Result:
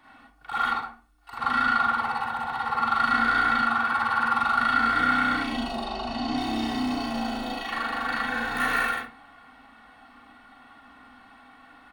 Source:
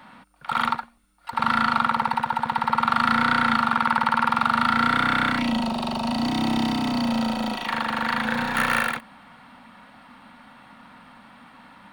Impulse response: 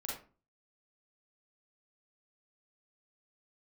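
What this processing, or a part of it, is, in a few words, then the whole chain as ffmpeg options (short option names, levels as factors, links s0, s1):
microphone above a desk: -filter_complex "[0:a]asettb=1/sr,asplit=3[s0][s1][s2];[s0]atrim=end=5.794[s3];[s1]atrim=start=5.79:end=6.36,asetpts=PTS-STARTPTS,afade=t=in:d=0.004:c=qsin,afade=t=out:st=0.566:d=0.004:c=qsin,lowpass=5900[s4];[s2]atrim=start=6.356[s5];[s3][s4]acrossfade=d=0.004:c1=hsin:c2=qsin[s6];[s6][s5]acrossfade=d=0.004:c1=qsin:c2=hsin,aecho=1:1:2.7:0.71[s7];[1:a]atrim=start_sample=2205[s8];[s7][s8]afir=irnorm=-1:irlink=0,volume=0.562"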